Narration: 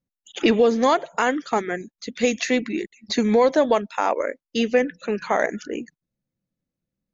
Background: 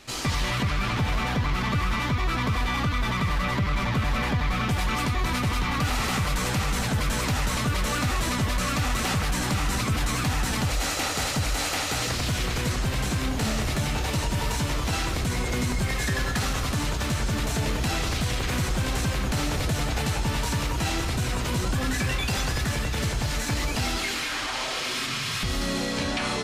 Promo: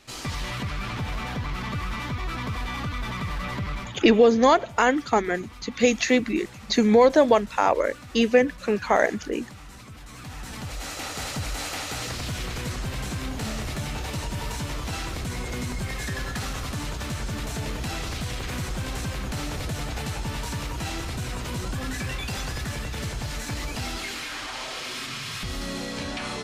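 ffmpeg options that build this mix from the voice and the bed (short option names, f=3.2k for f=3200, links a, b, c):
-filter_complex "[0:a]adelay=3600,volume=1dB[a];[1:a]volume=9dB,afade=t=out:st=3.71:d=0.29:silence=0.211349,afade=t=in:st=10.04:d=1.3:silence=0.199526[b];[a][b]amix=inputs=2:normalize=0"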